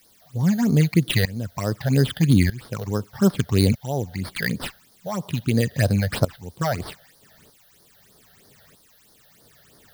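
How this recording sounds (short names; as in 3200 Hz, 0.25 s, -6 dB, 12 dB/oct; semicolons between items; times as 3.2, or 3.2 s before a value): aliases and images of a low sample rate 6600 Hz, jitter 0%; tremolo saw up 0.8 Hz, depth 90%; a quantiser's noise floor 10-bit, dither triangular; phasing stages 8, 3.1 Hz, lowest notch 300–2600 Hz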